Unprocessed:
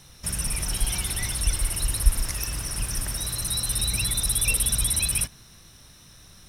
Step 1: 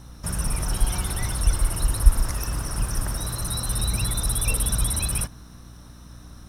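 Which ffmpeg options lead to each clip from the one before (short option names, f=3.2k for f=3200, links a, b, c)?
-af "aeval=exprs='val(0)+0.00398*(sin(2*PI*60*n/s)+sin(2*PI*2*60*n/s)/2+sin(2*PI*3*60*n/s)/3+sin(2*PI*4*60*n/s)/4+sin(2*PI*5*60*n/s)/5)':c=same,acrusher=bits=8:mode=log:mix=0:aa=0.000001,highshelf=f=1.7k:t=q:w=1.5:g=-7.5,volume=4.5dB"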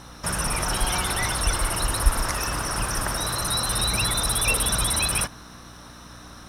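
-filter_complex "[0:a]asplit=2[a][b];[b]highpass=f=720:p=1,volume=16dB,asoftclip=type=tanh:threshold=-1dB[c];[a][c]amix=inputs=2:normalize=0,lowpass=f=3.8k:p=1,volume=-6dB"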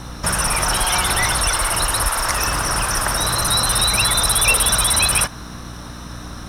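-filter_complex "[0:a]lowshelf=f=290:g=6,acrossover=split=550|7100[a][b][c];[a]acompressor=threshold=-31dB:ratio=5[d];[d][b][c]amix=inputs=3:normalize=0,volume=7.5dB"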